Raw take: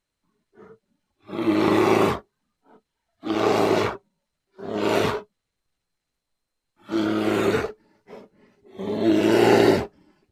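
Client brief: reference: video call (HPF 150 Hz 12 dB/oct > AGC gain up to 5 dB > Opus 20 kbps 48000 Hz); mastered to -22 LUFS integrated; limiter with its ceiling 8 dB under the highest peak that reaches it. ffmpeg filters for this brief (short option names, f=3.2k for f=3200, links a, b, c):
-af "alimiter=limit=-13dB:level=0:latency=1,highpass=150,dynaudnorm=m=5dB,volume=3.5dB" -ar 48000 -c:a libopus -b:a 20k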